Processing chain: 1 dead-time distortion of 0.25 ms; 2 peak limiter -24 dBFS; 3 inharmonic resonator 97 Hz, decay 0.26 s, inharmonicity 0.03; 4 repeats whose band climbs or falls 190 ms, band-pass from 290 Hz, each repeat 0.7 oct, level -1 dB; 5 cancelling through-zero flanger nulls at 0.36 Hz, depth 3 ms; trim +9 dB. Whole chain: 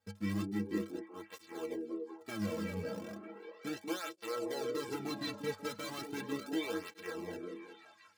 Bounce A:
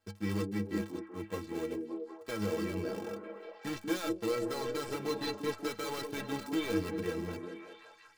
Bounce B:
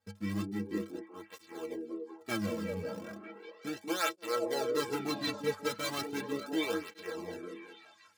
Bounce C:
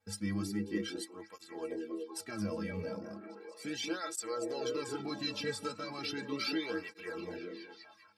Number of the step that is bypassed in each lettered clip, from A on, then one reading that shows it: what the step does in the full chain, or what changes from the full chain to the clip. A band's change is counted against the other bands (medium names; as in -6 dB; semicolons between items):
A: 5, momentary loudness spread change -1 LU; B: 2, mean gain reduction 2.0 dB; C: 1, distortion -6 dB